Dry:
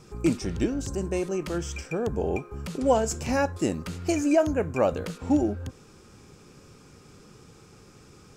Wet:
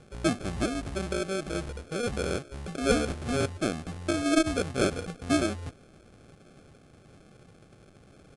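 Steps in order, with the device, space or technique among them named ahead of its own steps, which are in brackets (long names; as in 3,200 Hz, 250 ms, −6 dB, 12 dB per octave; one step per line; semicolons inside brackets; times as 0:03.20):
crushed at another speed (tape speed factor 2×; decimation without filtering 23×; tape speed factor 0.5×)
level −3 dB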